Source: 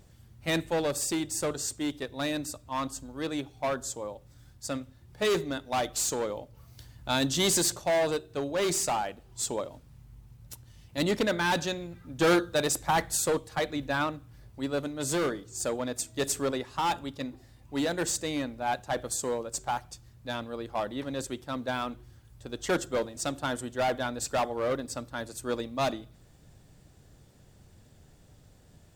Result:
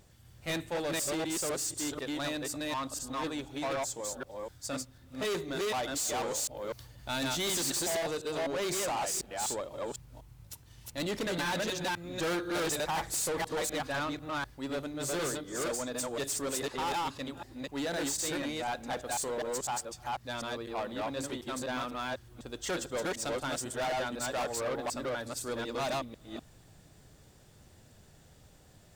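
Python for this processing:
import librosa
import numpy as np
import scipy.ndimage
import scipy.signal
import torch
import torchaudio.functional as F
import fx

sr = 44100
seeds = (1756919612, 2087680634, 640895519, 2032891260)

y = fx.reverse_delay(x, sr, ms=249, wet_db=-0.5)
y = fx.low_shelf(y, sr, hz=390.0, db=-5.5)
y = 10.0 ** (-29.5 / 20.0) * np.tanh(y / 10.0 ** (-29.5 / 20.0))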